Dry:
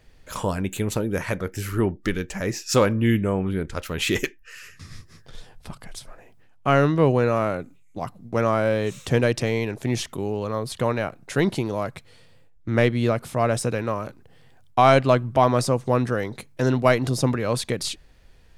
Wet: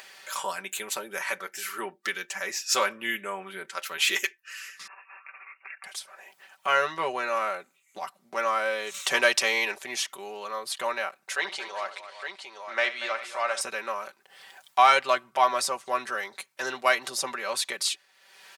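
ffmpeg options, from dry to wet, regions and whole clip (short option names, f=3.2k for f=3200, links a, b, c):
-filter_complex "[0:a]asettb=1/sr,asplit=3[a][b][c];[a]atrim=end=4.874[d];[b]atrim=start=4.87:end=5.84,asetpts=PTS-STARTPTS,afade=t=in:d=0.004:c=qsin,afade=t=out:st=0.966:d=0.004:c=qsin,aeval=exprs='if(lt(val(0),0),0.447*val(0),val(0))':c=same,highpass=450,lowpass=f=2.5k:t=q:w=0.5098,lowpass=f=2.5k:t=q:w=0.6013,lowpass=f=2.5k:t=q:w=0.9,lowpass=f=2.5k:t=q:w=2.563,afreqshift=-2900[e];[c]atrim=start=5.836[f];[d][e]acrossfade=d=0.004:c1=hsin:c2=qsin[g];[g][f]acrossfade=d=0.004:c1=qsin:c2=hsin,asettb=1/sr,asplit=3[h][i][j];[h]atrim=end=8.944[k];[i]atrim=start=8.94:end=9.78,asetpts=PTS-STARTPTS,afade=t=in:d=0.004:c=qsin,afade=t=out:st=0.836:d=0.004:c=qsin,lowshelf=f=340:g=-4,acontrast=83[l];[j]atrim=start=9.776[m];[k][l]acrossfade=d=0.004:c1=hsin:c2=qsin[n];[n][m]acrossfade=d=0.004:c1=qsin:c2=hsin,asettb=1/sr,asplit=3[o][p][q];[o]atrim=end=11.354[r];[p]atrim=start=11.35:end=13.61,asetpts=PTS-STARTPTS,afade=t=in:d=0.004:c=qsin,afade=t=out:st=2.256:d=0.004:c=qsin,acrossover=split=430 7900:gain=0.2 1 0.0708[s][t][u];[s][t][u]amix=inputs=3:normalize=0,aecho=1:1:70|235|385|863:0.224|0.211|0.133|0.376,atrim=end_sample=99666[v];[q]atrim=start=13.606[w];[r][v]acrossfade=d=0.004:c1=hsin:c2=qsin[x];[x][w]acrossfade=d=0.004:c1=qsin:c2=hsin,highpass=1k,aecho=1:1:5.2:0.74,acompressor=mode=upward:threshold=-36dB:ratio=2.5"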